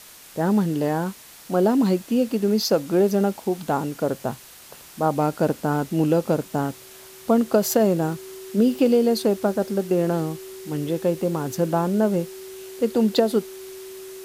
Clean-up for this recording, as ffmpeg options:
-af "bandreject=f=380:w=30,afwtdn=0.0063"

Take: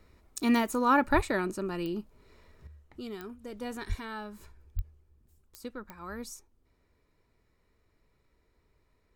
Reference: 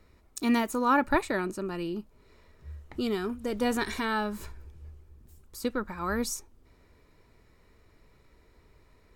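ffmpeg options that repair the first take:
-filter_complex "[0:a]adeclick=t=4,asplit=3[s0][s1][s2];[s0]afade=t=out:st=1.15:d=0.02[s3];[s1]highpass=f=140:w=0.5412,highpass=f=140:w=1.3066,afade=t=in:st=1.15:d=0.02,afade=t=out:st=1.27:d=0.02[s4];[s2]afade=t=in:st=1.27:d=0.02[s5];[s3][s4][s5]amix=inputs=3:normalize=0,asplit=3[s6][s7][s8];[s6]afade=t=out:st=3.88:d=0.02[s9];[s7]highpass=f=140:w=0.5412,highpass=f=140:w=1.3066,afade=t=in:st=3.88:d=0.02,afade=t=out:st=4:d=0.02[s10];[s8]afade=t=in:st=4:d=0.02[s11];[s9][s10][s11]amix=inputs=3:normalize=0,asplit=3[s12][s13][s14];[s12]afade=t=out:st=4.75:d=0.02[s15];[s13]highpass=f=140:w=0.5412,highpass=f=140:w=1.3066,afade=t=in:st=4.75:d=0.02,afade=t=out:st=4.87:d=0.02[s16];[s14]afade=t=in:st=4.87:d=0.02[s17];[s15][s16][s17]amix=inputs=3:normalize=0,asetnsamples=n=441:p=0,asendcmd='2.67 volume volume 10.5dB',volume=1"

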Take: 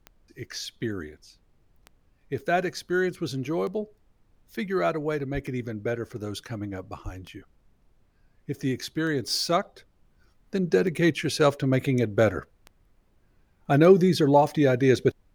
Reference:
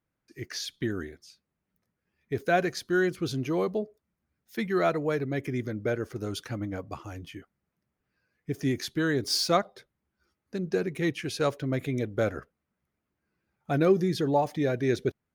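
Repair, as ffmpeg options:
-filter_complex "[0:a]adeclick=t=4,asplit=3[s0][s1][s2];[s0]afade=t=out:st=5.33:d=0.02[s3];[s1]highpass=f=140:w=0.5412,highpass=f=140:w=1.3066,afade=t=in:st=5.33:d=0.02,afade=t=out:st=5.45:d=0.02[s4];[s2]afade=t=in:st=5.45:d=0.02[s5];[s3][s4][s5]amix=inputs=3:normalize=0,asplit=3[s6][s7][s8];[s6]afade=t=out:st=7.04:d=0.02[s9];[s7]highpass=f=140:w=0.5412,highpass=f=140:w=1.3066,afade=t=in:st=7.04:d=0.02,afade=t=out:st=7.16:d=0.02[s10];[s8]afade=t=in:st=7.16:d=0.02[s11];[s9][s10][s11]amix=inputs=3:normalize=0,agate=range=0.0891:threshold=0.00178,asetnsamples=n=441:p=0,asendcmd='10.05 volume volume -6dB',volume=1"

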